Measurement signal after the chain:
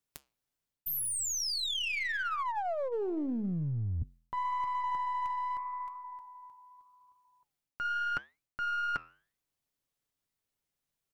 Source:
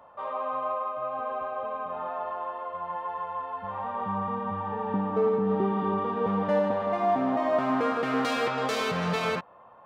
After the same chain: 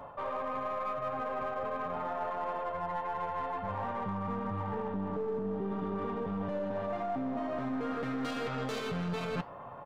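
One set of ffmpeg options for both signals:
-filter_complex "[0:a]lowshelf=f=280:g=11,aecho=1:1:7.1:0.32,alimiter=limit=0.0841:level=0:latency=1:release=116,areverse,acompressor=threshold=0.0141:ratio=8,areverse,aeval=exprs='0.0841*(cos(1*acos(clip(val(0)/0.0841,-1,1)))-cos(1*PI/2))+0.0211*(cos(2*acos(clip(val(0)/0.0841,-1,1)))-cos(2*PI/2))+0.00473*(cos(6*acos(clip(val(0)/0.0841,-1,1)))-cos(6*PI/2))':c=same,flanger=delay=4.4:depth=8:regen=-85:speed=0.83:shape=triangular,asplit=2[s0][s1];[s1]aeval=exprs='clip(val(0),-1,0.00891)':c=same,volume=0.501[s2];[s0][s2]amix=inputs=2:normalize=0,volume=2"

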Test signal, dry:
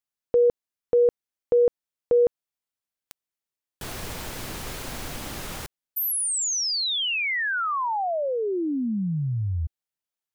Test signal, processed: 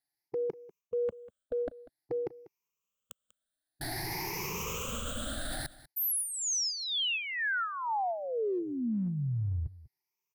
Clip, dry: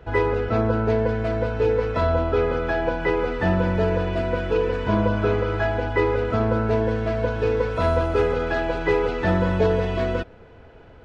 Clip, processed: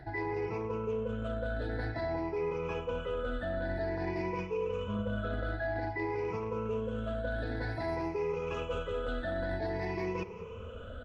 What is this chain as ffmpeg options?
-af "afftfilt=real='re*pow(10,21/40*sin(2*PI*(0.78*log(max(b,1)*sr/1024/100)/log(2)-(0.52)*(pts-256)/sr)))':imag='im*pow(10,21/40*sin(2*PI*(0.78*log(max(b,1)*sr/1024/100)/log(2)-(0.52)*(pts-256)/sr)))':win_size=1024:overlap=0.75,areverse,acompressor=threshold=0.0501:ratio=12:attack=0.37:release=244:knee=1:detection=peak,areverse,aecho=1:1:194:0.119,volume=0.75"

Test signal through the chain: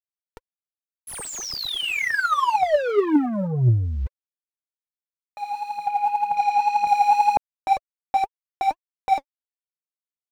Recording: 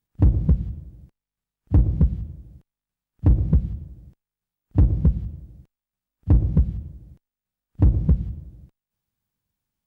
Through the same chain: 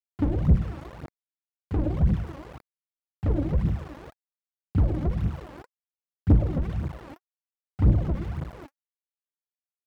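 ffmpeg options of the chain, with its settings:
-filter_complex "[0:a]aeval=exprs='val(0)*gte(abs(val(0)),0.00596)':c=same,asplit=2[s0][s1];[s1]highpass=f=720:p=1,volume=28.2,asoftclip=type=tanh:threshold=0.398[s2];[s0][s2]amix=inputs=2:normalize=0,lowpass=f=1100:p=1,volume=0.501,aphaser=in_gain=1:out_gain=1:delay=3.8:decay=0.64:speed=1.9:type=triangular,volume=0.422"

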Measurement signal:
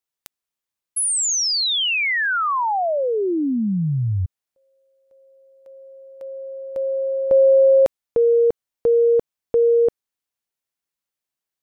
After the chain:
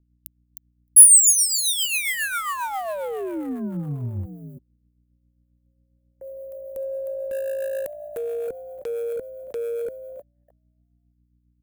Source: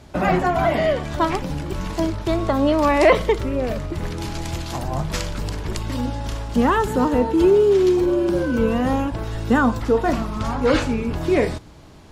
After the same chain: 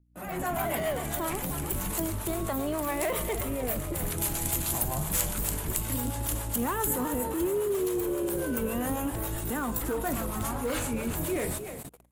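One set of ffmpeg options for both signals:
-filter_complex "[0:a]acompressor=threshold=0.0794:ratio=3:attack=0.12:release=45:knee=6:detection=peak,asplit=2[s0][s1];[s1]asplit=4[s2][s3][s4][s5];[s2]adelay=309,afreqshift=55,volume=0.282[s6];[s3]adelay=618,afreqshift=110,volume=0.122[s7];[s4]adelay=927,afreqshift=165,volume=0.0519[s8];[s5]adelay=1236,afreqshift=220,volume=0.0224[s9];[s6][s7][s8][s9]amix=inputs=4:normalize=0[s10];[s0][s10]amix=inputs=2:normalize=0,dynaudnorm=f=130:g=5:m=5.01,volume=2,asoftclip=hard,volume=0.501,aexciter=amount=6.5:drive=7.2:freq=7200,equalizer=f=6300:w=0.78:g=-7.5,agate=range=0.0126:threshold=0.0631:ratio=16:release=42:detection=rms,aeval=exprs='val(0)+0.00562*(sin(2*PI*60*n/s)+sin(2*PI*2*60*n/s)/2+sin(2*PI*3*60*n/s)/3+sin(2*PI*4*60*n/s)/4+sin(2*PI*5*60*n/s)/5)':c=same,acrossover=split=490[s11][s12];[s11]aeval=exprs='val(0)*(1-0.5/2+0.5/2*cos(2*PI*7.4*n/s))':c=same[s13];[s12]aeval=exprs='val(0)*(1-0.5/2-0.5/2*cos(2*PI*7.4*n/s))':c=same[s14];[s13][s14]amix=inputs=2:normalize=0,highshelf=f=2800:g=9.5,volume=0.158"

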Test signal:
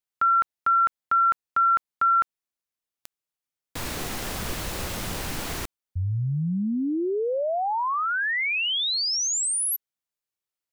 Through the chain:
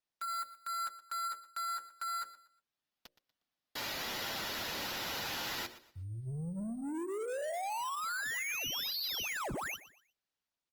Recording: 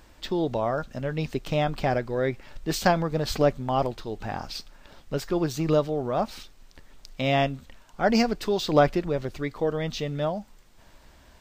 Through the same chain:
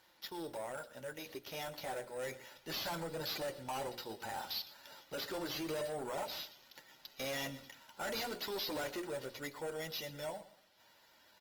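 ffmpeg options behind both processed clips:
-filter_complex "[0:a]tiltshelf=f=1100:g=-5,bandreject=f=60:t=h:w=6,bandreject=f=120:t=h:w=6,bandreject=f=180:t=h:w=6,bandreject=f=240:t=h:w=6,bandreject=f=300:t=h:w=6,bandreject=f=360:t=h:w=6,bandreject=f=420:t=h:w=6,bandreject=f=480:t=h:w=6,bandreject=f=540:t=h:w=6,bandreject=f=600:t=h:w=6,aecho=1:1:2.1:0.53,dynaudnorm=f=410:g=13:m=6.31,highpass=230,equalizer=f=250:t=q:w=4:g=4,equalizer=f=430:t=q:w=4:g=-7,equalizer=f=770:t=q:w=4:g=4,equalizer=f=1100:t=q:w=4:g=-6,equalizer=f=2500:t=q:w=4:g=-4,equalizer=f=6900:t=q:w=4:g=-8,lowpass=f=9200:w=0.5412,lowpass=f=9200:w=1.3066,flanger=delay=5.3:depth=6:regen=-25:speed=0.3:shape=triangular,acompressor=threshold=0.1:ratio=20:attack=0.45:release=27:knee=6:detection=peak,asoftclip=type=tanh:threshold=0.0282,asplit=2[s0][s1];[s1]aecho=0:1:120|240|360:0.158|0.0491|0.0152[s2];[s0][s2]amix=inputs=2:normalize=0,acrusher=samples=5:mix=1:aa=0.000001,volume=0.562" -ar 48000 -c:a libopus -b:a 24k

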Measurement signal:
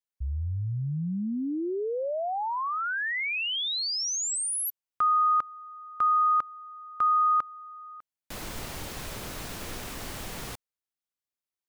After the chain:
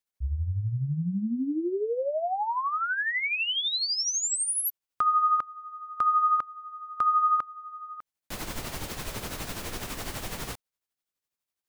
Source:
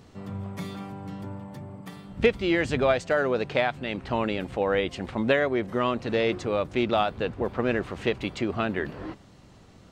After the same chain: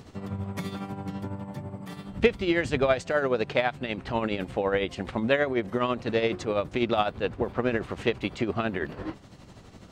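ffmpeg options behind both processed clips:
-filter_complex "[0:a]asplit=2[s0][s1];[s1]acompressor=threshold=0.0224:ratio=6:attack=0.27:release=653:knee=6:detection=peak,volume=1.06[s2];[s0][s2]amix=inputs=2:normalize=0,tremolo=f=12:d=0.57"

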